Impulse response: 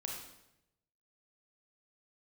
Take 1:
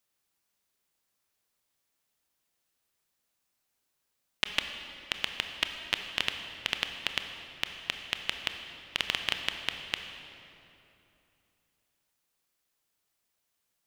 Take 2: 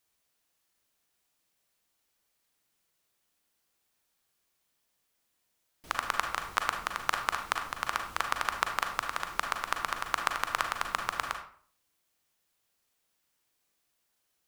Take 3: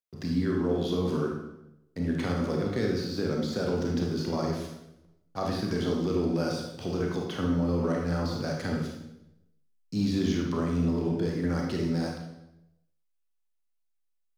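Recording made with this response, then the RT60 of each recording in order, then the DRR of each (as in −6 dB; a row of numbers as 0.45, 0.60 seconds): 3; 3.0, 0.50, 0.85 seconds; 5.5, 4.0, −0.5 decibels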